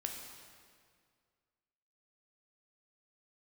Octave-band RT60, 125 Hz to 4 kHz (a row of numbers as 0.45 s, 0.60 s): 2.3 s, 2.1 s, 2.1 s, 2.0 s, 1.8 s, 1.7 s